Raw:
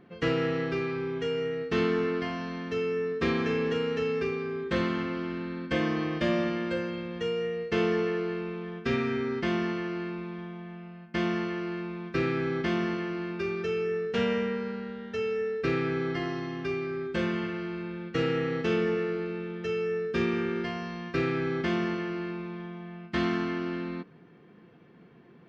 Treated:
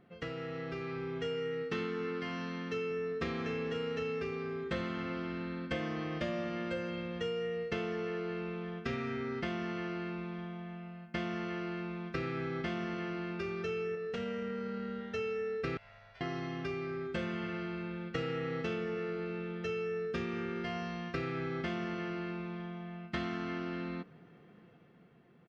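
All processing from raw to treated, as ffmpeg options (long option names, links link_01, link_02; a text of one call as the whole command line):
ffmpeg -i in.wav -filter_complex "[0:a]asettb=1/sr,asplit=3[link_01][link_02][link_03];[link_01]atrim=end=1.344[link_04];[link_02]atrim=start=1.34:end=2.91,asetpts=PTS-STARTPTS,afade=type=in:duration=0.004:curve=qsin,afade=type=out:start_time=1.566:duration=0.004:curve=qsin,highpass=120,bandreject=frequency=670:width=5[link_05];[link_03]atrim=start=2.906[link_06];[link_04][link_05]acrossfade=duration=0.004:curve1=hsin:curve2=qsin[link_07];[link_07][link_06]acrossfade=duration=0.004:curve1=qsin:curve2=hsin,asettb=1/sr,asplit=3[link_08][link_09][link_10];[link_08]atrim=end=13.954[link_11];[link_09]atrim=start=13.95:end=15.01,asetpts=PTS-STARTPTS,afade=type=in:duration=0.004:curve=qsin,afade=type=out:start_time=1.056:duration=0.004:curve=qsin,acompressor=threshold=-33dB:ratio=4:attack=3.2:release=140:knee=1:detection=peak,asplit=2[link_12][link_13];[link_13]adelay=21,volume=-8dB[link_14];[link_12][link_14]amix=inputs=2:normalize=0,atrim=end_sample=46746[link_15];[link_10]atrim=start=15.006[link_16];[link_11][link_15]acrossfade=duration=0.004:curve1=hsin:curve2=qsin[link_17];[link_17][link_16]acrossfade=duration=0.004:curve1=qsin:curve2=hsin,asettb=1/sr,asplit=3[link_18][link_19][link_20];[link_18]atrim=end=15.774[link_21];[link_19]atrim=start=15.77:end=16.21,asetpts=PTS-STARTPTS,afade=type=in:duration=0.004:curve=qsin,afade=type=out:start_time=0.436:duration=0.004:curve=qsin,lowpass=frequency=1500:poles=1,aderivative,aeval=exprs='val(0)*sin(2*PI*290*n/s)':channel_layout=same[link_22];[link_20]atrim=start=16.206[link_23];[link_21][link_22]acrossfade=duration=0.004:curve1=hsin:curve2=qsin[link_24];[link_24][link_23]acrossfade=duration=0.004:curve1=qsin:curve2=hsin,acompressor=threshold=-30dB:ratio=6,aecho=1:1:1.5:0.3,dynaudnorm=framelen=130:gausssize=13:maxgain=5dB,volume=-7dB" out.wav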